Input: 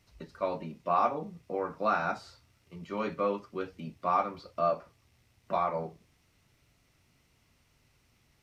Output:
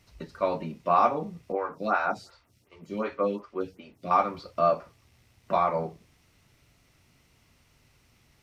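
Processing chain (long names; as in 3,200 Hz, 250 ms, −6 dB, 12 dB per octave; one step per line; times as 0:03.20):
0:01.52–0:04.11: phaser with staggered stages 2.7 Hz
level +5 dB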